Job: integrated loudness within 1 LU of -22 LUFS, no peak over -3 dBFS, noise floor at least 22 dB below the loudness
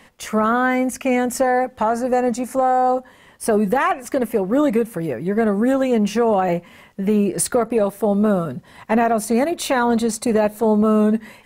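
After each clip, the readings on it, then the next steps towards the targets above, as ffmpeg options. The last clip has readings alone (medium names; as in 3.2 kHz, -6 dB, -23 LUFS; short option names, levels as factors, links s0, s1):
loudness -19.5 LUFS; peak level -7.5 dBFS; loudness target -22.0 LUFS
-> -af "volume=0.75"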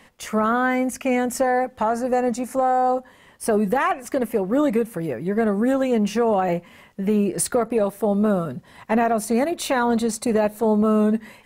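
loudness -22.0 LUFS; peak level -10.0 dBFS; noise floor -52 dBFS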